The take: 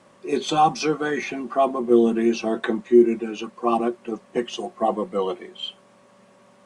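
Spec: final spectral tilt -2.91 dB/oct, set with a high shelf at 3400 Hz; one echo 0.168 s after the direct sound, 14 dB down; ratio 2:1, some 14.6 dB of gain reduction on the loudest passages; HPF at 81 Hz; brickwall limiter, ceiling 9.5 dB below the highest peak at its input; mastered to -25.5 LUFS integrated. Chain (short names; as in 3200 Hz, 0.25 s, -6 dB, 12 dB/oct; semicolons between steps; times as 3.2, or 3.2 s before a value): HPF 81 Hz; high shelf 3400 Hz -4 dB; compressor 2:1, threshold -37 dBFS; limiter -28 dBFS; echo 0.168 s -14 dB; gain +12 dB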